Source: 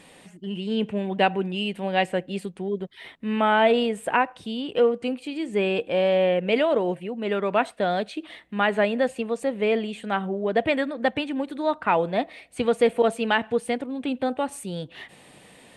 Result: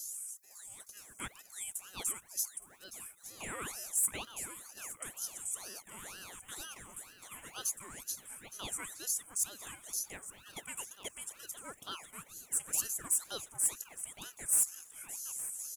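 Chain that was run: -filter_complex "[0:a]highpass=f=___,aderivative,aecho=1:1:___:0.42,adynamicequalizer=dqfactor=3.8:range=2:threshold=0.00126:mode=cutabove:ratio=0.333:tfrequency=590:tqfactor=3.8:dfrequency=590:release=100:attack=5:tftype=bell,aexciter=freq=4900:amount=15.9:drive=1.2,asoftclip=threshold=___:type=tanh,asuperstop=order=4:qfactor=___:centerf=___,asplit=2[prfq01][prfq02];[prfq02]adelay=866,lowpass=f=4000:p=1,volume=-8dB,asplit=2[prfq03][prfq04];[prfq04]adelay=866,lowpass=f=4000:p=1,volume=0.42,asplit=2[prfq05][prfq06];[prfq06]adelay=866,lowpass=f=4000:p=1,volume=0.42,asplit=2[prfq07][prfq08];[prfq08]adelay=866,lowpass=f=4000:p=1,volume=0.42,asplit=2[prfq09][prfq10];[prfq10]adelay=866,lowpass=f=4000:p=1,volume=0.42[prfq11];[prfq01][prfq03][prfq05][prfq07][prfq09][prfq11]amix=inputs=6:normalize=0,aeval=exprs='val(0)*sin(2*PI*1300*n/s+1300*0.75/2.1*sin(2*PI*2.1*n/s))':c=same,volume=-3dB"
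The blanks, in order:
330, 1.1, -17dB, 0.88, 4100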